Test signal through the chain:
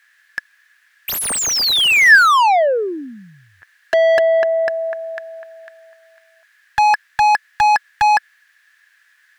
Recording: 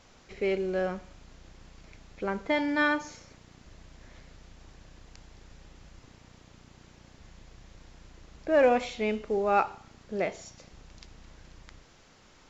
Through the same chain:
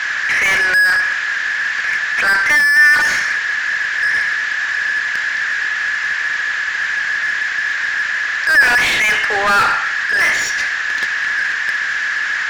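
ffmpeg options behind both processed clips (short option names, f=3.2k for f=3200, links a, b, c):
-filter_complex "[0:a]highpass=f=1.7k:t=q:w=15,asplit=2[a][b];[b]highpass=f=720:p=1,volume=37dB,asoftclip=type=tanh:threshold=-10.5dB[c];[a][c]amix=inputs=2:normalize=0,lowpass=f=2.4k:p=1,volume=-6dB,acontrast=43"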